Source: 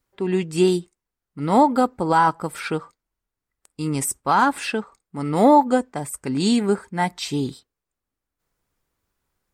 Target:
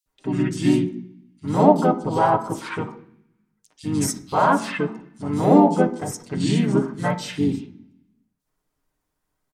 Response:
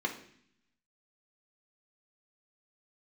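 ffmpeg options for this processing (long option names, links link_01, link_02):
-filter_complex "[0:a]asplit=3[link_01][link_02][link_03];[link_02]asetrate=29433,aresample=44100,atempo=1.49831,volume=-3dB[link_04];[link_03]asetrate=35002,aresample=44100,atempo=1.25992,volume=-4dB[link_05];[link_01][link_04][link_05]amix=inputs=3:normalize=0,acrossover=split=3300[link_06][link_07];[link_06]adelay=60[link_08];[link_08][link_07]amix=inputs=2:normalize=0,asplit=2[link_09][link_10];[1:a]atrim=start_sample=2205,asetrate=39690,aresample=44100,adelay=6[link_11];[link_10][link_11]afir=irnorm=-1:irlink=0,volume=-10dB[link_12];[link_09][link_12]amix=inputs=2:normalize=0,volume=-4.5dB"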